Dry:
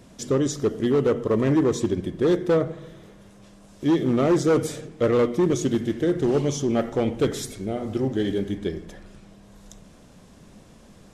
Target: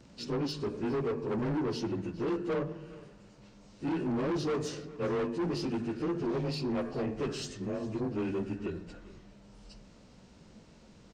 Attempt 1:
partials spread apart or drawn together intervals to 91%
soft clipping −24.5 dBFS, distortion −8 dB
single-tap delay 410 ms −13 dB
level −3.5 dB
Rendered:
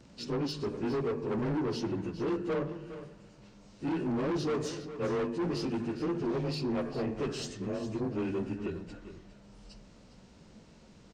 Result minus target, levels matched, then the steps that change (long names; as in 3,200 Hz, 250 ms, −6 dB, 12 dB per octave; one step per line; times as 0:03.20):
echo-to-direct +7 dB
change: single-tap delay 410 ms −20 dB